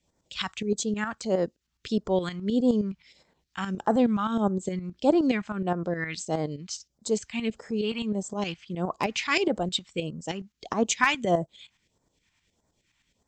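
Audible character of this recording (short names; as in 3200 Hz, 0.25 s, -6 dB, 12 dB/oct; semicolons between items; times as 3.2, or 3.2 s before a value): tremolo saw up 9.6 Hz, depth 65%; phasing stages 2, 1.6 Hz, lowest notch 450–2600 Hz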